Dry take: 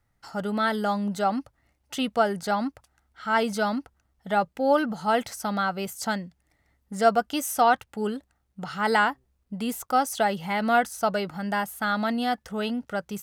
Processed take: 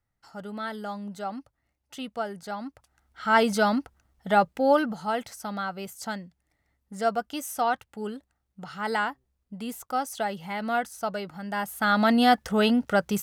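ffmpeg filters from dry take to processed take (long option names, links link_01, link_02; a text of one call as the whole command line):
ffmpeg -i in.wav -af "volume=15.5dB,afade=type=in:start_time=2.64:duration=0.62:silence=0.251189,afade=type=out:start_time=4.45:duration=0.7:silence=0.375837,afade=type=in:start_time=11.5:duration=0.74:silence=0.237137" out.wav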